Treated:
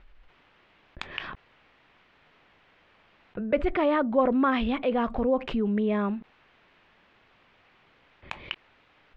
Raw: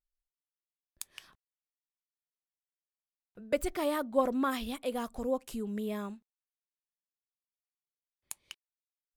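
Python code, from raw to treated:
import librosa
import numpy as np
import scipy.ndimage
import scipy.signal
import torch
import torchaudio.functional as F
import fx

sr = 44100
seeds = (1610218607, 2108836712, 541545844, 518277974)

y = scipy.signal.sosfilt(scipy.signal.butter(4, 2800.0, 'lowpass', fs=sr, output='sos'), x)
y = fx.env_flatten(y, sr, amount_pct=50)
y = F.gain(torch.from_numpy(y), 3.5).numpy()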